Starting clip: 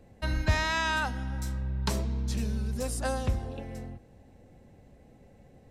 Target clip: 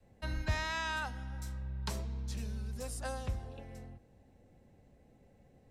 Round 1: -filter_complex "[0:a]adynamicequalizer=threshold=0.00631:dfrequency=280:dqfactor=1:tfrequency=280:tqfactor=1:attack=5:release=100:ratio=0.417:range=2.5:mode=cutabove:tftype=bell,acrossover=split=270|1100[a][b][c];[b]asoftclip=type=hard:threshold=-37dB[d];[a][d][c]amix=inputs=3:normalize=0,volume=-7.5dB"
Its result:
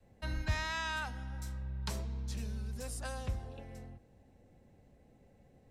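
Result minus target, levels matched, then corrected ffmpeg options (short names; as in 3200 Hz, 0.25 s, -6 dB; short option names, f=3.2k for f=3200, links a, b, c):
hard clip: distortion +25 dB
-filter_complex "[0:a]adynamicequalizer=threshold=0.00631:dfrequency=280:dqfactor=1:tfrequency=280:tqfactor=1:attack=5:release=100:ratio=0.417:range=2.5:mode=cutabove:tftype=bell,acrossover=split=270|1100[a][b][c];[b]asoftclip=type=hard:threshold=-28dB[d];[a][d][c]amix=inputs=3:normalize=0,volume=-7.5dB"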